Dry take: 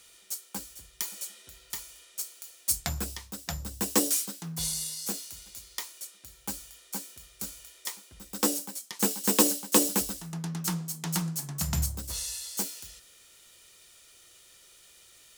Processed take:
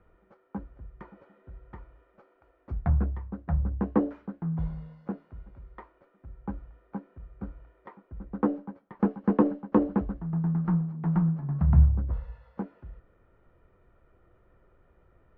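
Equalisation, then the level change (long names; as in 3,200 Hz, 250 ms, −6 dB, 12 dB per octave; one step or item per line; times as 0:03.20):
low-pass filter 1,500 Hz 24 dB per octave
spectral tilt −3 dB per octave
dynamic equaliser 390 Hz, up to −3 dB, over −38 dBFS, Q 0.99
+1.0 dB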